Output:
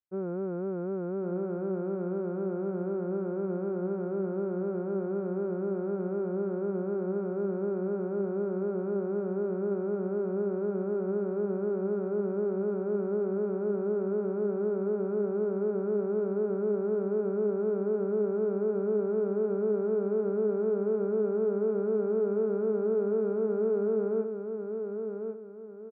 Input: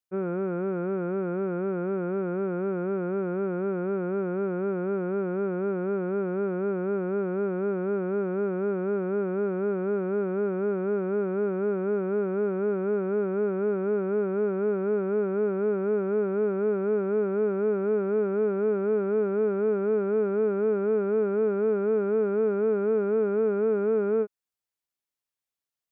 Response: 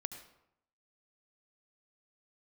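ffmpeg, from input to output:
-af "lowpass=1000,aecho=1:1:1097|2194|3291|4388:0.473|0.161|0.0547|0.0186,volume=-4dB"

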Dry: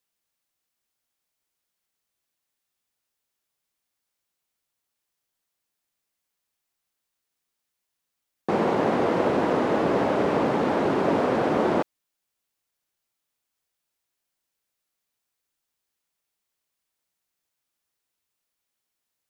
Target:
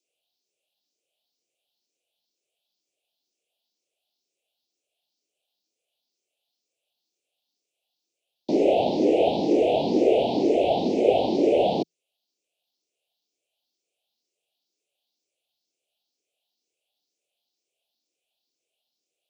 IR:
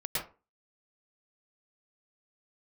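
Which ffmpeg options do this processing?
-filter_complex "[0:a]afftfilt=real='re*pow(10,13/40*sin(2*PI*(0.54*log(max(b,1)*sr/1024/100)/log(2)-(2.1)*(pts-256)/sr)))':imag='im*pow(10,13/40*sin(2*PI*(0.54*log(max(b,1)*sr/1024/100)/log(2)-(2.1)*(pts-256)/sr)))':win_size=1024:overlap=0.75,afreqshift=-170,asuperstop=centerf=1400:order=8:qfactor=0.74,acrossover=split=290 5200:gain=0.0708 1 0.1[link_01][link_02][link_03];[link_01][link_02][link_03]amix=inputs=3:normalize=0,acrossover=split=190|560|2600[link_04][link_05][link_06][link_07];[link_04]asoftclip=type=tanh:threshold=-39.5dB[link_08];[link_08][link_05][link_06][link_07]amix=inputs=4:normalize=0,highpass=68,highshelf=frequency=7300:gain=5.5,volume=5dB"

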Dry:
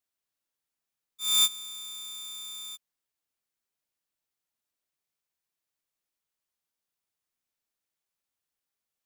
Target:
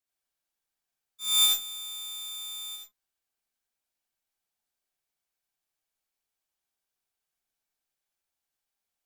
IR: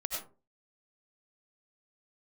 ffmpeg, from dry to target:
-filter_complex "[1:a]atrim=start_sample=2205,afade=type=out:start_time=0.24:duration=0.01,atrim=end_sample=11025,asetrate=52920,aresample=44100[link_01];[0:a][link_01]afir=irnorm=-1:irlink=0"

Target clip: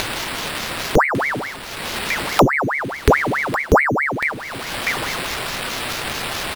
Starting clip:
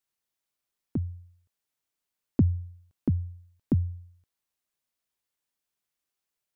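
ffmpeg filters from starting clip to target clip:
ffmpeg -i in.wav -filter_complex "[0:a]acompressor=mode=upward:threshold=-25dB:ratio=2.5,equalizer=frequency=620:width_type=o:width=1.5:gain=-13,acompressor=threshold=-37dB:ratio=5,afreqshift=-16,bandreject=frequency=73.67:width_type=h:width=4,bandreject=frequency=147.34:width_type=h:width=4,bandreject=frequency=221.01:width_type=h:width=4,bandreject=frequency=294.68:width_type=h:width=4,bandreject=frequency=368.35:width_type=h:width=4,bandreject=frequency=442.02:width_type=h:width=4,bandreject=frequency=515.69:width_type=h:width=4,bandreject=frequency=589.36:width_type=h:width=4,bandreject=frequency=663.03:width_type=h:width=4,bandreject=frequency=736.7:width_type=h:width=4,bandreject=frequency=810.37:width_type=h:width=4,apsyclip=31dB,asplit=2[link_01][link_02];[link_02]aecho=0:1:1149:0.299[link_03];[link_01][link_03]amix=inputs=2:normalize=0,acrusher=samples=7:mix=1:aa=0.000001,aeval=exprs='val(0)*sin(2*PI*1200*n/s+1200*0.85/4.7*sin(2*PI*4.7*n/s))':channel_layout=same,volume=-1.5dB" out.wav

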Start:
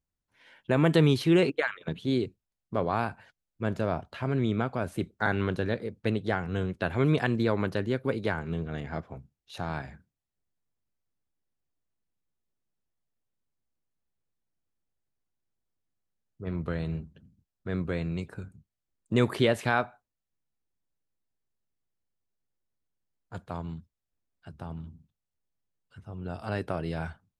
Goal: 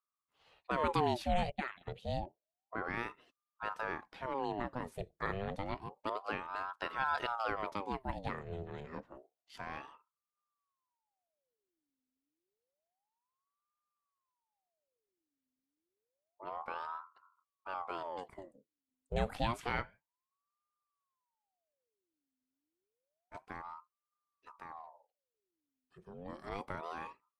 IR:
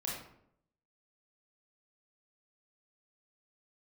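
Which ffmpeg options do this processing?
-filter_complex "[0:a]asplit=3[link_01][link_02][link_03];[link_01]afade=type=out:start_time=2.19:duration=0.02[link_04];[link_02]lowpass=frequency=1000:poles=1,afade=type=in:start_time=2.19:duration=0.02,afade=type=out:start_time=2.83:duration=0.02[link_05];[link_03]afade=type=in:start_time=2.83:duration=0.02[link_06];[link_04][link_05][link_06]amix=inputs=3:normalize=0,aeval=exprs='val(0)*sin(2*PI*730*n/s+730*0.65/0.29*sin(2*PI*0.29*n/s))':channel_layout=same,volume=-7.5dB"

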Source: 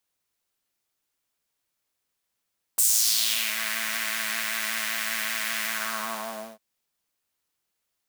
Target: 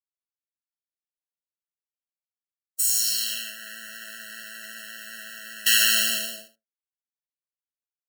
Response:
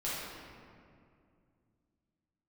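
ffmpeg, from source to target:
-filter_complex "[0:a]asettb=1/sr,asplit=3[link_01][link_02][link_03];[link_01]atrim=end=5.664[link_04];[link_02]atrim=start=5.66:end=6.48,asetpts=PTS-STARTPTS,afade=type=in:duration=0.004:curve=qsin,afade=type=out:start_time=0.816:duration=0.004:curve=qsin,highshelf=frequency=1800:width_type=q:width=1.5:gain=14[link_05];[link_03]atrim=start=6.476[link_06];[link_04][link_05]acrossfade=duration=0.004:curve1=hsin:curve2=qsin[link_07];[link_07][link_06]acrossfade=duration=0.004:curve1=qsin:curve2=hsin,agate=range=-33dB:threshold=-20dB:ratio=3:detection=peak,asplit=2[link_08][link_09];[link_09]aecho=0:1:75:0.2[link_10];[link_08][link_10]amix=inputs=2:normalize=0,afftfilt=real='re*eq(mod(floor(b*sr/1024/650),2),0)':imag='im*eq(mod(floor(b*sr/1024/650),2),0)':win_size=1024:overlap=0.75,volume=2.5dB"

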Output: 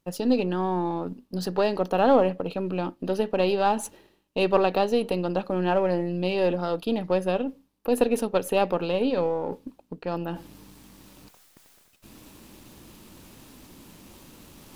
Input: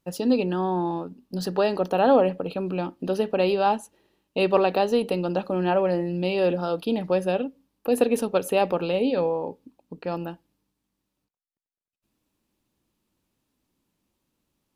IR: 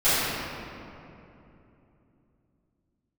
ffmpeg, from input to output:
-af "aeval=exprs='if(lt(val(0),0),0.708*val(0),val(0))':channel_layout=same,areverse,acompressor=mode=upward:threshold=-25dB:ratio=2.5,areverse"

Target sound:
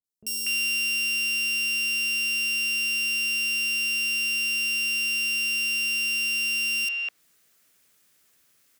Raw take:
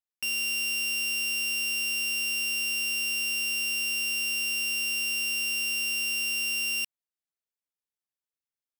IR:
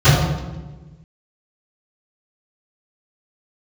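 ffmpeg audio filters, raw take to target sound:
-filter_complex "[0:a]highpass=frequency=99:poles=1,equalizer=frequency=890:width=2.9:gain=-8.5,acrossover=split=550|3800[link_01][link_02][link_03];[link_03]adelay=40[link_04];[link_02]adelay=240[link_05];[link_01][link_05][link_04]amix=inputs=3:normalize=0,areverse,acompressor=mode=upward:threshold=-46dB:ratio=2.5,areverse,adynamicequalizer=threshold=0.00631:dfrequency=6500:dqfactor=0.7:tfrequency=6500:tqfactor=0.7:attack=5:release=100:ratio=0.375:range=3:mode=cutabove:tftype=highshelf,volume=4.5dB"

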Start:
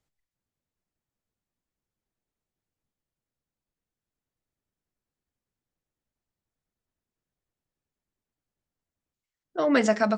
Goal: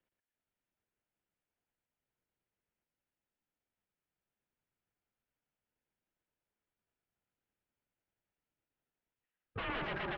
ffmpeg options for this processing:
ffmpeg -i in.wav -filter_complex "[0:a]aeval=exprs='if(lt(val(0),0),0.447*val(0),val(0))':channel_layout=same,highpass=56,equalizer=frequency=120:width_type=o:width=0.68:gain=-12,bandreject=frequency=1400:width=12,acrossover=split=120|470|2100[link_01][link_02][link_03][link_04];[link_03]alimiter=level_in=1.5dB:limit=-24dB:level=0:latency=1,volume=-1.5dB[link_05];[link_01][link_02][link_05][link_04]amix=inputs=4:normalize=0,acompressor=threshold=-26dB:ratio=6,aeval=exprs='0.0178*(abs(mod(val(0)/0.0178+3,4)-2)-1)':channel_layout=same,aecho=1:1:116:0.596,highpass=frequency=290:width_type=q:width=0.5412,highpass=frequency=290:width_type=q:width=1.307,lowpass=frequency=3400:width_type=q:width=0.5176,lowpass=frequency=3400:width_type=q:width=0.7071,lowpass=frequency=3400:width_type=q:width=1.932,afreqshift=-270,volume=2dB" out.wav

